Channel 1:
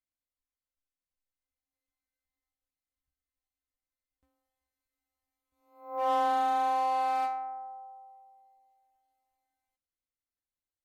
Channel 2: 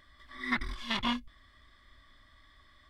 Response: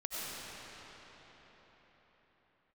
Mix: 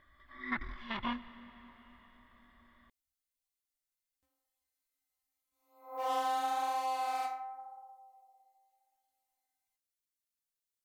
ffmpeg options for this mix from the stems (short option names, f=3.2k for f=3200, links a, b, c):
-filter_complex "[0:a]highshelf=f=3.1k:g=12,flanger=delay=4.1:depth=8.6:regen=-46:speed=0.87:shape=sinusoidal,volume=-2.5dB[a];[1:a]lowpass=2.1k,volume=-3.5dB,asplit=2[b][c];[c]volume=-17dB[d];[2:a]atrim=start_sample=2205[e];[d][e]afir=irnorm=-1:irlink=0[f];[a][b][f]amix=inputs=3:normalize=0,lowshelf=f=340:g=-3.5"